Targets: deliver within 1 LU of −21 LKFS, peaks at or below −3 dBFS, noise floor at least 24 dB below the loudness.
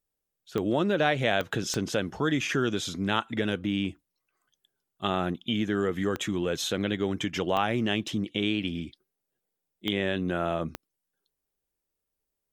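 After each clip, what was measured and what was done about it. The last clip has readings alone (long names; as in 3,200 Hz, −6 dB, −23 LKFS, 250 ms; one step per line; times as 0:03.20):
number of clicks 7; integrated loudness −28.5 LKFS; sample peak −9.5 dBFS; target loudness −21.0 LKFS
→ click removal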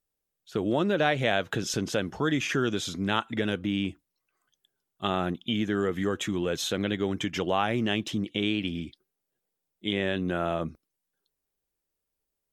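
number of clicks 0; integrated loudness −28.5 LKFS; sample peak −9.5 dBFS; target loudness −21.0 LKFS
→ level +7.5 dB
brickwall limiter −3 dBFS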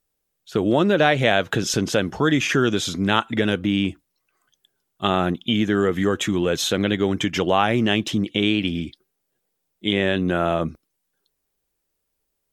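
integrated loudness −21.5 LKFS; sample peak −3.0 dBFS; background noise floor −77 dBFS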